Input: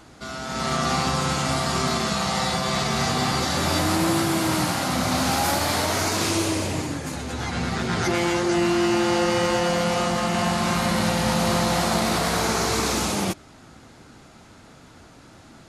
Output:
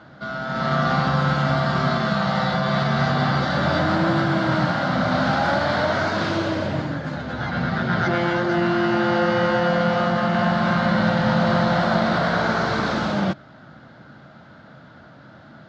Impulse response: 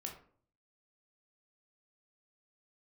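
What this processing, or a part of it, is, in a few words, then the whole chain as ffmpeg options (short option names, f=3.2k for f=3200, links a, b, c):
guitar cabinet: -af "highpass=89,equalizer=f=140:t=q:w=4:g=8,equalizer=f=200:t=q:w=4:g=5,equalizer=f=410:t=q:w=4:g=-5,equalizer=f=600:t=q:w=4:g=8,equalizer=f=1.5k:t=q:w=4:g=9,equalizer=f=2.5k:t=q:w=4:g=-8,lowpass=f=4k:w=0.5412,lowpass=f=4k:w=1.3066"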